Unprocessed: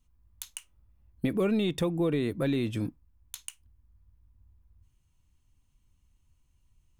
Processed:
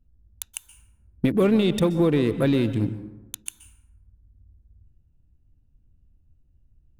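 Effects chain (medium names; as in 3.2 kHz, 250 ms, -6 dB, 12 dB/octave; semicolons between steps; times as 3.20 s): local Wiener filter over 41 samples; plate-style reverb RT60 1 s, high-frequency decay 0.5×, pre-delay 115 ms, DRR 12 dB; trim +7.5 dB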